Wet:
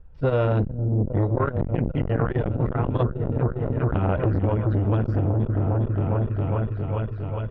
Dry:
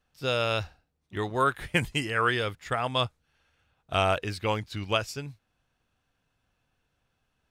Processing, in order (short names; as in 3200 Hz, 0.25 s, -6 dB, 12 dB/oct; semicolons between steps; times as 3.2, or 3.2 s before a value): phaser 1.6 Hz, delay 4.8 ms, feedback 32%; Bessel low-pass 1700 Hz, order 2; tilt -4 dB/oct; comb 2.1 ms, depth 39%; repeats that get brighter 0.407 s, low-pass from 200 Hz, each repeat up 1 oct, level -3 dB; compressor 6:1, threshold -24 dBFS, peak gain reduction 11.5 dB; core saturation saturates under 330 Hz; gain +8.5 dB